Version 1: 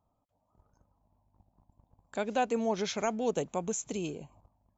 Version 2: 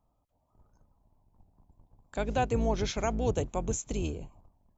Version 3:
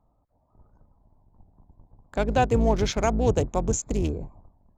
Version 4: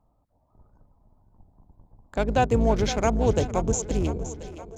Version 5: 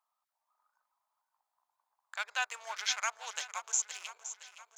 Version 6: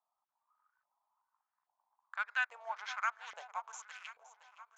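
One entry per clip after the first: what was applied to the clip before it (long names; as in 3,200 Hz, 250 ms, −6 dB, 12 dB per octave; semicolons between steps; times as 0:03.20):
sub-octave generator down 2 octaves, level +4 dB
adaptive Wiener filter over 15 samples; level +7 dB
echo with a time of its own for lows and highs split 350 Hz, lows 239 ms, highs 517 ms, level −12 dB
inverse Chebyshev high-pass filter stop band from 270 Hz, stop band 70 dB
auto-filter band-pass saw up 1.2 Hz 620–1,900 Hz; level +3.5 dB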